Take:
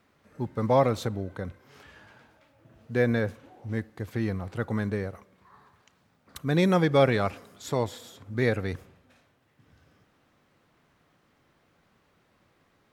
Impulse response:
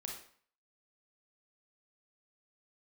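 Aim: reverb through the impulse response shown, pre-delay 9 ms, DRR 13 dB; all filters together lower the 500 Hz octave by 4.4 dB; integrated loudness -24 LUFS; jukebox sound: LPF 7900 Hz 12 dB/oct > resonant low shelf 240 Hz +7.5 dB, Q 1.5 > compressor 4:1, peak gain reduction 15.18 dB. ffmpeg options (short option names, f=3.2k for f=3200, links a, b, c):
-filter_complex "[0:a]equalizer=f=500:t=o:g=-3.5,asplit=2[a][b];[1:a]atrim=start_sample=2205,adelay=9[c];[b][c]afir=irnorm=-1:irlink=0,volume=-11dB[d];[a][d]amix=inputs=2:normalize=0,lowpass=7.9k,lowshelf=f=240:t=q:w=1.5:g=7.5,acompressor=threshold=-32dB:ratio=4,volume=11.5dB"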